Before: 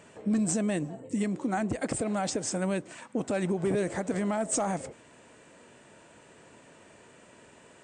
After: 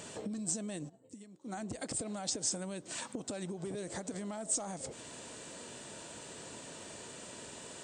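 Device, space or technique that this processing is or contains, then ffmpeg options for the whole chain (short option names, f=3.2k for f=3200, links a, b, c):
serial compression, peaks first: -filter_complex "[0:a]acompressor=threshold=-38dB:ratio=6,acompressor=threshold=-46dB:ratio=2,asplit=3[a][b][c];[a]afade=t=out:st=0.88:d=0.02[d];[b]agate=range=-33dB:threshold=-35dB:ratio=3:detection=peak,afade=t=in:st=0.88:d=0.02,afade=t=out:st=1.45:d=0.02[e];[c]afade=t=in:st=1.45:d=0.02[f];[d][e][f]amix=inputs=3:normalize=0,highshelf=f=3k:t=q:w=1.5:g=7.5,volume=5dB"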